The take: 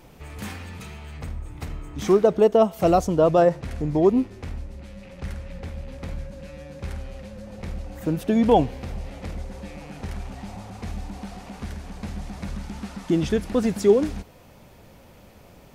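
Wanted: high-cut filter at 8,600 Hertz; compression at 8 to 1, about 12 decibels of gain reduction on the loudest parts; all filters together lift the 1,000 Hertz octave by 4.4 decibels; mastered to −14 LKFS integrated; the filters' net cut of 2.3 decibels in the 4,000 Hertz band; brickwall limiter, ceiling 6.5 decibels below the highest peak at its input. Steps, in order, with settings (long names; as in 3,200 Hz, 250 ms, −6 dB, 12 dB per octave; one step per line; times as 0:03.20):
low-pass filter 8,600 Hz
parametric band 1,000 Hz +7 dB
parametric band 4,000 Hz −3.5 dB
downward compressor 8 to 1, threshold −23 dBFS
level +20 dB
brickwall limiter −1.5 dBFS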